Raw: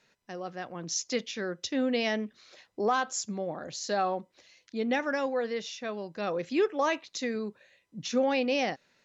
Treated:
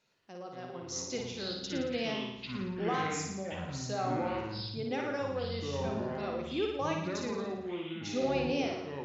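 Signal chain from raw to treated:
parametric band 1,800 Hz −9 dB 0.26 octaves
delay with pitch and tempo change per echo 114 ms, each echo −6 semitones, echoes 3
flutter between parallel walls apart 9.7 metres, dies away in 0.82 s
level −7.5 dB

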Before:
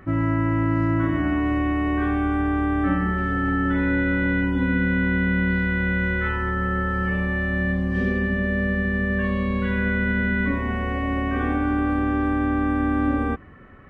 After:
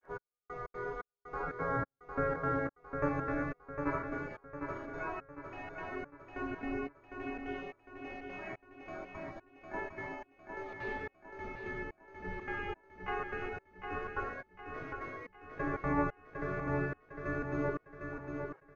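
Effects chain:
flanger 0.36 Hz, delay 9.4 ms, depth 1.7 ms, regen +89%
wrong playback speed 45 rpm record played at 33 rpm
flutter between parallel walls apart 7.1 metres, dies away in 0.24 s
gate on every frequency bin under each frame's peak −15 dB weak
comb filter 7.4 ms, depth 31%
gate pattern "xx....xx.x" 179 BPM −60 dB
granular cloud 155 ms, spray 13 ms, pitch spread up and down by 0 semitones
repeating echo 755 ms, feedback 43%, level −6 dB
level +4 dB

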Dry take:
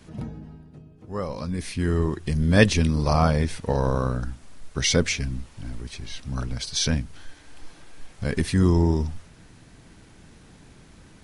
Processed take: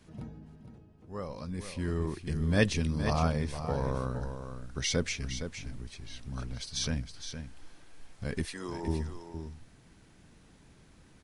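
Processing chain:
0:08.45–0:08.88: high-pass filter 500 Hz 12 dB per octave
on a send: single-tap delay 464 ms −9 dB
on the sum: level −9 dB

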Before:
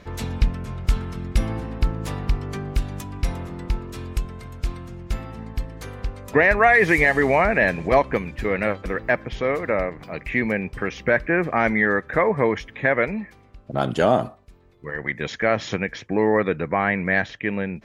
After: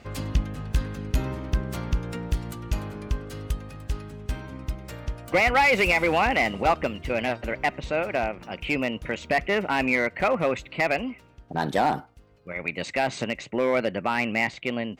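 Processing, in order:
asymmetric clip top −12.5 dBFS
change of speed 1.19×
level −3 dB

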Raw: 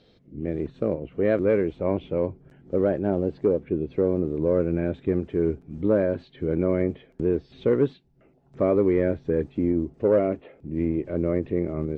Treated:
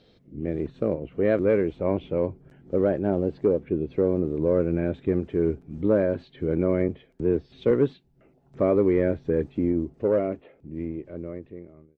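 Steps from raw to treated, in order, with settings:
fade-out on the ending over 2.47 s
0:06.88–0:07.71: multiband upward and downward expander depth 40%

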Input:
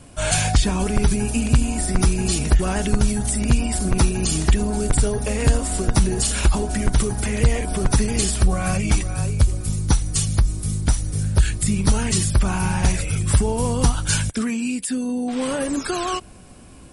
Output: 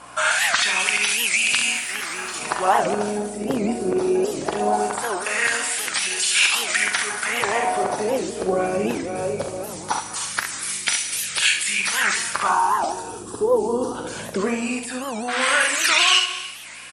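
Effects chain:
high-pass filter 85 Hz
RIAA equalisation recording
in parallel at +3 dB: downward compressor, threshold −24 dBFS, peak gain reduction 16.5 dB
on the sum: brickwall limiter −5.5 dBFS, peak gain reduction 10 dB
speech leveller 2 s
0:01.72–0:02.34: hard clipping −20.5 dBFS, distortion −19 dB
0:12.48–0:13.95: phaser with its sweep stopped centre 580 Hz, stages 6
mains hum 60 Hz, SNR 20 dB
auto-filter band-pass sine 0.2 Hz 400–2,600 Hz
on a send: ambience of single reflections 43 ms −7.5 dB, 68 ms −7 dB
on the sum: reverb whose tail is shaped and stops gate 340 ms flat, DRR 11 dB
wow of a warped record 78 rpm, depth 250 cents
level +9 dB

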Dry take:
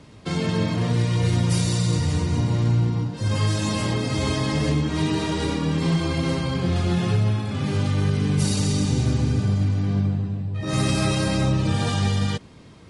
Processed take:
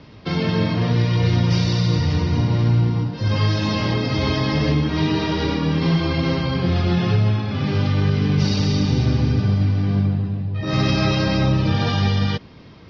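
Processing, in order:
elliptic low-pass filter 5,400 Hz, stop band 40 dB
level +4 dB

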